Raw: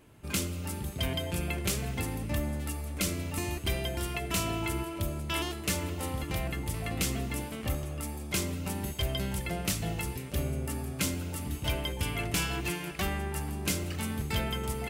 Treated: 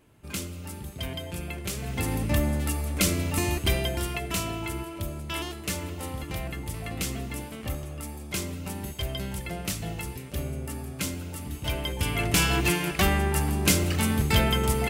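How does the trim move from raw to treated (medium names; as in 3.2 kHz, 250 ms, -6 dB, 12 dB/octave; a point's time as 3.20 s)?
1.72 s -2.5 dB
2.13 s +7 dB
3.62 s +7 dB
4.56 s -0.5 dB
11.52 s -0.5 dB
12.54 s +9 dB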